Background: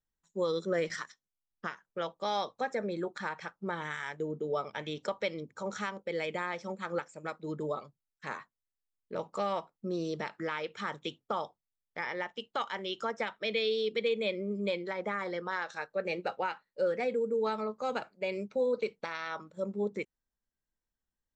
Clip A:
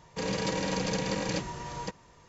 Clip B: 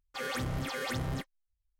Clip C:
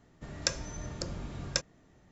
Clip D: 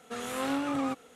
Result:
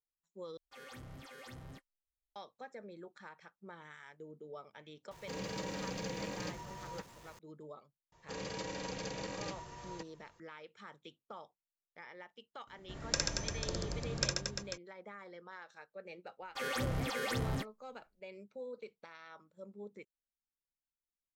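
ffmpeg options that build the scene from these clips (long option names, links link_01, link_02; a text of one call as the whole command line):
ffmpeg -i bed.wav -i cue0.wav -i cue1.wav -i cue2.wav -filter_complex "[2:a]asplit=2[link_01][link_02];[1:a]asplit=2[link_03][link_04];[0:a]volume=-15.5dB[link_05];[link_03]aeval=exprs='val(0)+0.5*0.0075*sgn(val(0))':channel_layout=same[link_06];[link_04]equalizer=frequency=190:width_type=o:width=0.81:gain=-4.5[link_07];[3:a]aecho=1:1:60|135|228.8|345.9|492.4:0.794|0.631|0.501|0.398|0.316[link_08];[link_05]asplit=2[link_09][link_10];[link_09]atrim=end=0.574[link_11];[link_01]atrim=end=1.79,asetpts=PTS-STARTPTS,volume=-16.5dB[link_12];[link_10]atrim=start=2.356[link_13];[link_06]atrim=end=2.28,asetpts=PTS-STARTPTS,volume=-11dB,afade=type=in:duration=0.004:curve=hsin,afade=type=out:start_time=2.276:duration=0.004:curve=hsin,adelay=5110[link_14];[link_07]atrim=end=2.28,asetpts=PTS-STARTPTS,volume=-10dB,afade=type=in:duration=0.004:curve=hsin,afade=type=out:start_time=2.276:duration=0.004:curve=hsin,adelay=8120[link_15];[link_08]atrim=end=2.11,asetpts=PTS-STARTPTS,volume=-4dB,afade=type=in:duration=0.004:curve=hsin,afade=type=out:start_time=2.106:duration=0.004:curve=hsin,adelay=12670[link_16];[link_02]atrim=end=1.79,asetpts=PTS-STARTPTS,volume=-1.5dB,afade=type=in:duration=0.004:curve=hsin,afade=type=out:start_time=1.786:duration=0.004:curve=hsin,adelay=16410[link_17];[link_11][link_12]acrossfade=duration=0.004:curve1=hsin:curve2=hsin[link_18];[link_18][link_13]acrossfade=duration=0.004:curve1=hsin:curve2=hsin[link_19];[link_19][link_14][link_15][link_16][link_17]amix=inputs=5:normalize=0" out.wav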